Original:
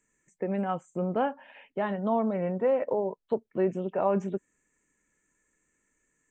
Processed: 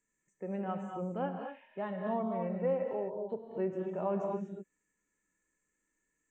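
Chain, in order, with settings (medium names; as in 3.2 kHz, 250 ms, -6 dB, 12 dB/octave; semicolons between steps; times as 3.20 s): gated-style reverb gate 270 ms rising, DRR 4 dB; harmonic-percussive split percussive -6 dB; trim -7.5 dB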